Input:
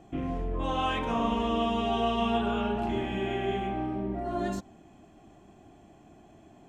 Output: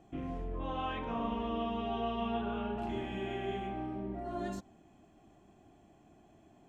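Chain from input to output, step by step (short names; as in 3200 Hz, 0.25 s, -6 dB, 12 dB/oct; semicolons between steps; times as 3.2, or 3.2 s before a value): 0.59–2.78 air absorption 200 m; gain -7 dB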